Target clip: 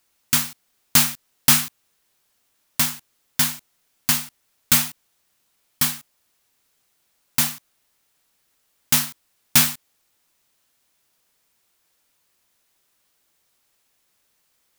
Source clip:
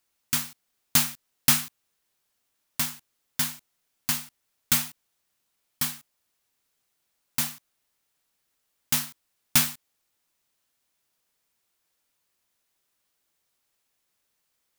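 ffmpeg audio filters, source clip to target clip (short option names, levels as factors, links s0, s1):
-af "asoftclip=type=tanh:threshold=0.211,volume=2.51"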